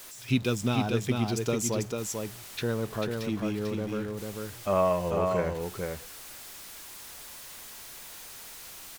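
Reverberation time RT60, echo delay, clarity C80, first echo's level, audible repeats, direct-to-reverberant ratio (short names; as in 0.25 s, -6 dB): none, 0.444 s, none, -4.0 dB, 1, none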